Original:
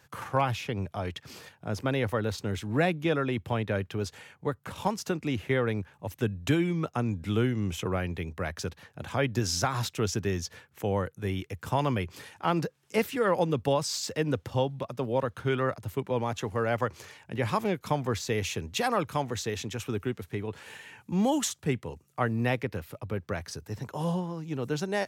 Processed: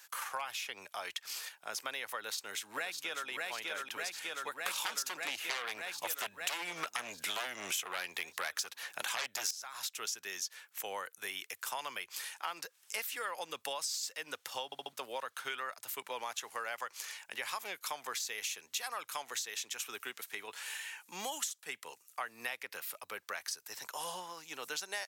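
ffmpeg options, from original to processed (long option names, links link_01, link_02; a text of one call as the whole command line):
ffmpeg -i in.wav -filter_complex "[0:a]asplit=2[link_01][link_02];[link_02]afade=type=in:start_time=2.17:duration=0.01,afade=type=out:start_time=3.28:duration=0.01,aecho=0:1:600|1200|1800|2400|3000|3600|4200|4800|5400|6000:0.707946|0.460165|0.299107|0.19442|0.126373|0.0821423|0.0533925|0.0347051|0.0225583|0.0146629[link_03];[link_01][link_03]amix=inputs=2:normalize=0,asettb=1/sr,asplit=3[link_04][link_05][link_06];[link_04]atrim=end=4.664[link_07];[link_05]atrim=start=4.66:end=9.51,asetpts=PTS-STARTPTS,afade=type=in:duration=0.004:curve=qsin,afade=type=out:start_time=4.846:duration=0.004:curve=qsin,aeval=exprs='0.251*sin(PI/2*3.98*val(0)/0.251)':channel_layout=same[link_08];[link_06]atrim=start=9.506[link_09];[link_07][link_08]acrossfade=duration=0.004:curve1=hsin:curve2=qsin[link_10];[link_10][link_09]acrossfade=duration=0.004:curve1=qsin:curve2=hsin,asplit=5[link_11][link_12][link_13][link_14][link_15];[link_11]atrim=end=14.722[link_16];[link_12]atrim=start=14.648:end=14.722[link_17];[link_13]atrim=start=14.648:end=14.722[link_18];[link_14]atrim=start=14.648:end=14.722[link_19];[link_15]atrim=start=14.928[link_20];[link_16][link_17]acrossfade=duration=0.004:curve1=hsin:curve2=hsin[link_21];[link_21][link_18]acrossfade=duration=0.004:curve1=hsin:curve2=hsin[link_22];[link_22][link_19]acrossfade=duration=0.004:curve1=hsin:curve2=hsin[link_23];[link_23][link_20]acrossfade=duration=0.004:curve1=hsin:curve2=hsin,highpass=1100,highshelf=frequency=4800:gain=11.5,acompressor=threshold=-38dB:ratio=6,volume=2dB" out.wav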